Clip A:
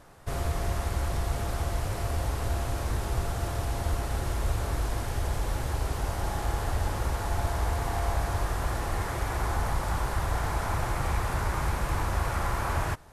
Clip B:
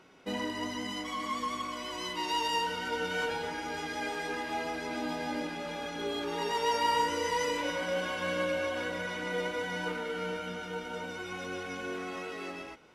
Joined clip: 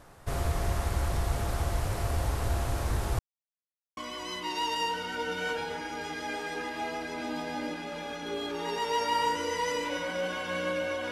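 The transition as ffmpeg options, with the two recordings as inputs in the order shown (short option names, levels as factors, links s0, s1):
-filter_complex "[0:a]apad=whole_dur=11.11,atrim=end=11.11,asplit=2[s0][s1];[s0]atrim=end=3.19,asetpts=PTS-STARTPTS,afade=t=out:st=3.186:d=0.004:c=hsin[s2];[s1]atrim=start=3.19:end=3.97,asetpts=PTS-STARTPTS,volume=0[s3];[1:a]atrim=start=1.7:end=8.84,asetpts=PTS-STARTPTS,afade=t=in:d=0.004:c=hsin[s4];[s2][s3][s4]concat=n=3:v=0:a=1"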